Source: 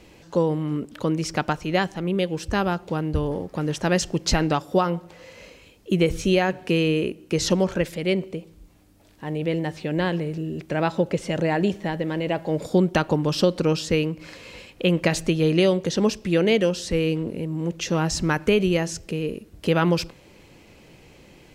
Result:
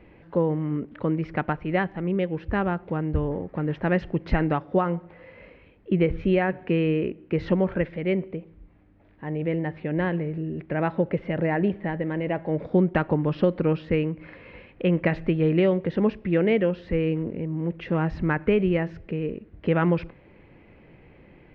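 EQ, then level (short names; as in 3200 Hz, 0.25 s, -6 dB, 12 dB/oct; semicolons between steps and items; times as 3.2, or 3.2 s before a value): air absorption 360 m; tape spacing loss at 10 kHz 26 dB; bell 2000 Hz +8 dB 0.81 oct; 0.0 dB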